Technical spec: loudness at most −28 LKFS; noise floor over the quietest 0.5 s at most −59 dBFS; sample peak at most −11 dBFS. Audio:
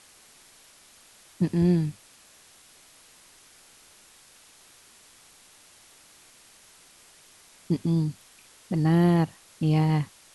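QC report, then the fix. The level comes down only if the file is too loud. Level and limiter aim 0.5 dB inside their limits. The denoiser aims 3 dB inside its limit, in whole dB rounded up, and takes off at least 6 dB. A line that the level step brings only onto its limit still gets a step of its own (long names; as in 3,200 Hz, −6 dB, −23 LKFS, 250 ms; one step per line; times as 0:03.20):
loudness −25.0 LKFS: out of spec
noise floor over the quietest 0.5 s −55 dBFS: out of spec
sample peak −13.0 dBFS: in spec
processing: broadband denoise 6 dB, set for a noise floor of −55 dBFS
level −3.5 dB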